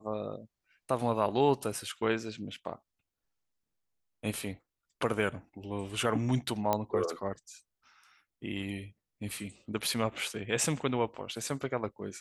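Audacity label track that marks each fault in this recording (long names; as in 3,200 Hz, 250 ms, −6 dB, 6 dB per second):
6.730000	6.730000	click −14 dBFS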